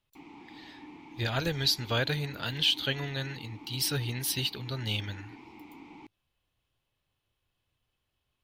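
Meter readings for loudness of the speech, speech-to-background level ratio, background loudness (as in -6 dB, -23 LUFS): -30.5 LUFS, 19.0 dB, -49.5 LUFS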